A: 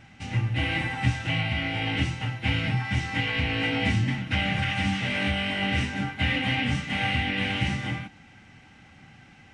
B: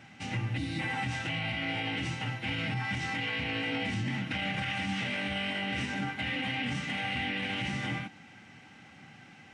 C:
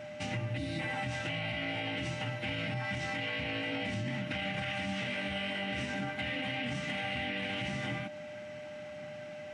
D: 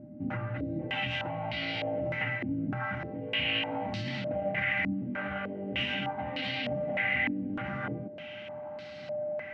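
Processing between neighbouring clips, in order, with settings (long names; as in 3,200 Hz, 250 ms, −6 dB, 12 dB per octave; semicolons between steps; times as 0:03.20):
gain on a spectral selection 0:00.58–0:00.80, 330–3,500 Hz −15 dB; high-pass filter 140 Hz 12 dB per octave; brickwall limiter −24.5 dBFS, peak gain reduction 10.5 dB
downward compressor 2.5 to 1, threshold −38 dBFS, peak gain reduction 6.5 dB; steady tone 600 Hz −45 dBFS; level +2.5 dB
low-pass on a step sequencer 3.3 Hz 290–4,400 Hz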